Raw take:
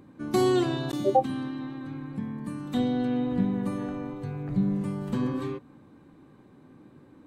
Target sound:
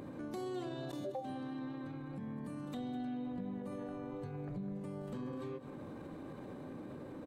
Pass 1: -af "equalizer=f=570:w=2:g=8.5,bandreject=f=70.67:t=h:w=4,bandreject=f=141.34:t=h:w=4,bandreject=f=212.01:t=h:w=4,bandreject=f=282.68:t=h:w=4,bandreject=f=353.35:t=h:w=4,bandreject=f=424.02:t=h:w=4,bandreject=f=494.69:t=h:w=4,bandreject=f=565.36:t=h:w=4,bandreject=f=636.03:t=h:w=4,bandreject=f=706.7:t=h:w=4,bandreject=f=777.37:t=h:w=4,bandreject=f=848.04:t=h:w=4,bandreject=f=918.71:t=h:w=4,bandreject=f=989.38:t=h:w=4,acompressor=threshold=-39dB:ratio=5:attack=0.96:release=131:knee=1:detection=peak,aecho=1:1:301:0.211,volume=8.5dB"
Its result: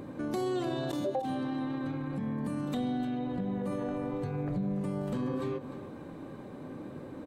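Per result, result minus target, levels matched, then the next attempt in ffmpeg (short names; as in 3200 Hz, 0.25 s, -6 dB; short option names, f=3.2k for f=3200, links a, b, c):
echo 95 ms late; compressor: peak gain reduction -9 dB
-af "equalizer=f=570:w=2:g=8.5,bandreject=f=70.67:t=h:w=4,bandreject=f=141.34:t=h:w=4,bandreject=f=212.01:t=h:w=4,bandreject=f=282.68:t=h:w=4,bandreject=f=353.35:t=h:w=4,bandreject=f=424.02:t=h:w=4,bandreject=f=494.69:t=h:w=4,bandreject=f=565.36:t=h:w=4,bandreject=f=636.03:t=h:w=4,bandreject=f=706.7:t=h:w=4,bandreject=f=777.37:t=h:w=4,bandreject=f=848.04:t=h:w=4,bandreject=f=918.71:t=h:w=4,bandreject=f=989.38:t=h:w=4,acompressor=threshold=-39dB:ratio=5:attack=0.96:release=131:knee=1:detection=peak,aecho=1:1:206:0.211,volume=8.5dB"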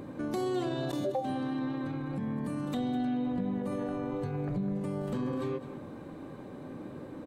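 compressor: peak gain reduction -9 dB
-af "equalizer=f=570:w=2:g=8.5,bandreject=f=70.67:t=h:w=4,bandreject=f=141.34:t=h:w=4,bandreject=f=212.01:t=h:w=4,bandreject=f=282.68:t=h:w=4,bandreject=f=353.35:t=h:w=4,bandreject=f=424.02:t=h:w=4,bandreject=f=494.69:t=h:w=4,bandreject=f=565.36:t=h:w=4,bandreject=f=636.03:t=h:w=4,bandreject=f=706.7:t=h:w=4,bandreject=f=777.37:t=h:w=4,bandreject=f=848.04:t=h:w=4,bandreject=f=918.71:t=h:w=4,bandreject=f=989.38:t=h:w=4,acompressor=threshold=-50.5dB:ratio=5:attack=0.96:release=131:knee=1:detection=peak,aecho=1:1:206:0.211,volume=8.5dB"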